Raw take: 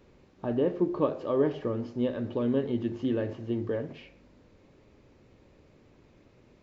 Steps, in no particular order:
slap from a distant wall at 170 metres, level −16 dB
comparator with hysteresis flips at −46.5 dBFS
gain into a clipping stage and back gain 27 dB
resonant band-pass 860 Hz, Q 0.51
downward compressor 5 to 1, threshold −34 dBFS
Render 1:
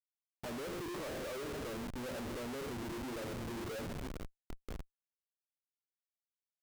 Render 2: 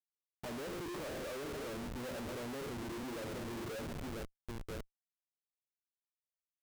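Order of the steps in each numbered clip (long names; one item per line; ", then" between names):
resonant band-pass, then gain into a clipping stage and back, then downward compressor, then slap from a distant wall, then comparator with hysteresis
slap from a distant wall, then gain into a clipping stage and back, then resonant band-pass, then downward compressor, then comparator with hysteresis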